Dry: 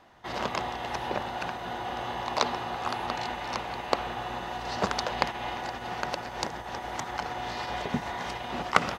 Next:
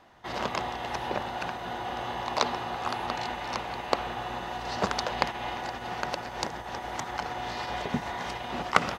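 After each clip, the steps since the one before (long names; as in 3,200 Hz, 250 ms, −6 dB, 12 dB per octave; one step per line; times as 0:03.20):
no processing that can be heard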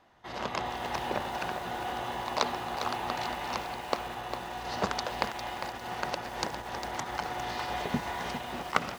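automatic gain control gain up to 5 dB
feedback echo at a low word length 403 ms, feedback 35%, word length 6 bits, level −8 dB
level −6 dB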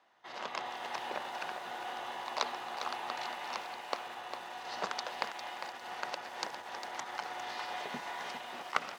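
meter weighting curve A
level −5 dB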